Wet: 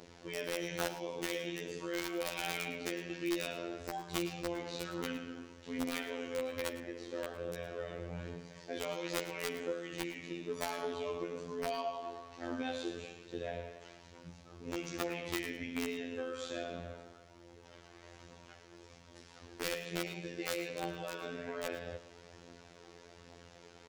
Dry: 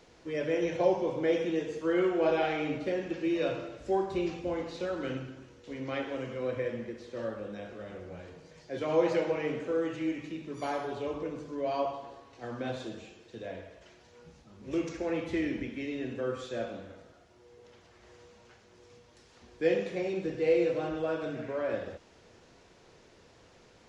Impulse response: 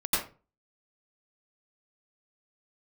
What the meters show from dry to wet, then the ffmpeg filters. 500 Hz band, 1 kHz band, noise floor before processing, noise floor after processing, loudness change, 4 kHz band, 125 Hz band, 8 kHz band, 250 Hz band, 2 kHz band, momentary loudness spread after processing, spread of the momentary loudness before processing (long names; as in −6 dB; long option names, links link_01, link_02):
−9.0 dB, −5.5 dB, −59 dBFS, −58 dBFS, −7.5 dB, +3.0 dB, −6.0 dB, can't be measured, −7.5 dB, −1.5 dB, 19 LU, 17 LU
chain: -filter_complex "[0:a]highpass=44,bandreject=frequency=298.7:width_type=h:width=4,bandreject=frequency=597.4:width_type=h:width=4,bandreject=frequency=896.1:width_type=h:width=4,bandreject=frequency=1194.8:width_type=h:width=4,bandreject=frequency=1493.5:width_type=h:width=4,bandreject=frequency=1792.2:width_type=h:width=4,bandreject=frequency=2090.9:width_type=h:width=4,bandreject=frequency=2389.6:width_type=h:width=4,acrossover=split=2100[link_01][link_02];[link_01]acompressor=threshold=-38dB:ratio=10[link_03];[link_03][link_02]amix=inputs=2:normalize=0,aphaser=in_gain=1:out_gain=1:delay=2.9:decay=0.34:speed=1.2:type=triangular,aeval=exprs='(mod(31.6*val(0)+1,2)-1)/31.6':channel_layout=same,afftfilt=real='hypot(re,im)*cos(PI*b)':imag='0':win_size=2048:overlap=0.75,asplit=2[link_04][link_05];[link_05]aecho=0:1:109:0.178[link_06];[link_04][link_06]amix=inputs=2:normalize=0,volume=5dB"